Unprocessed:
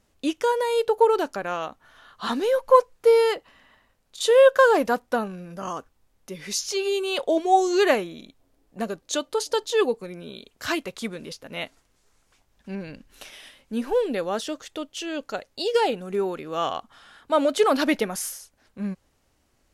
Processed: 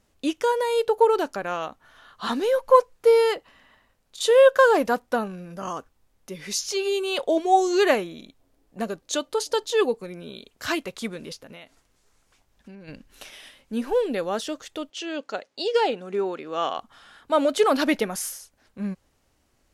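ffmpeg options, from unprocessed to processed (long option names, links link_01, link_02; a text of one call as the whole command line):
ffmpeg -i in.wav -filter_complex "[0:a]asplit=3[link_01][link_02][link_03];[link_01]afade=type=out:start_time=11.42:duration=0.02[link_04];[link_02]acompressor=threshold=-39dB:ratio=16:attack=3.2:release=140:knee=1:detection=peak,afade=type=in:start_time=11.42:duration=0.02,afade=type=out:start_time=12.87:duration=0.02[link_05];[link_03]afade=type=in:start_time=12.87:duration=0.02[link_06];[link_04][link_05][link_06]amix=inputs=3:normalize=0,asettb=1/sr,asplit=3[link_07][link_08][link_09];[link_07]atrim=end=14.904[link_10];[link_08]atrim=start=14.9:end=16.78,asetpts=PTS-STARTPTS,afade=type=in:duration=0.004:curve=qsin,afade=type=out:start_time=1.876:duration=0.004:curve=qsin,highpass=220,lowpass=6400[link_11];[link_09]atrim=start=16.776[link_12];[link_10][link_11]acrossfade=duration=0.004:curve1=hsin:curve2=qsin[link_13];[link_13][link_12]acrossfade=duration=0.004:curve1=qsin:curve2=hsin" out.wav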